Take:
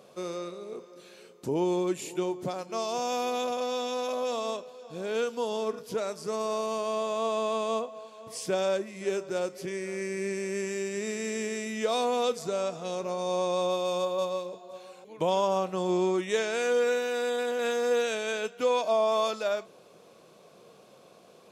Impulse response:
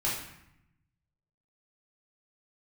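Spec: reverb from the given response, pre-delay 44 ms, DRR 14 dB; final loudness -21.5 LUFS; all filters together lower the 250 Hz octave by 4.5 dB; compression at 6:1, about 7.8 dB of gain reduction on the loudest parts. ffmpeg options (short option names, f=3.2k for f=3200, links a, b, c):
-filter_complex "[0:a]equalizer=f=250:t=o:g=-7.5,acompressor=threshold=-31dB:ratio=6,asplit=2[a][b];[1:a]atrim=start_sample=2205,adelay=44[c];[b][c]afir=irnorm=-1:irlink=0,volume=-21.5dB[d];[a][d]amix=inputs=2:normalize=0,volume=14dB"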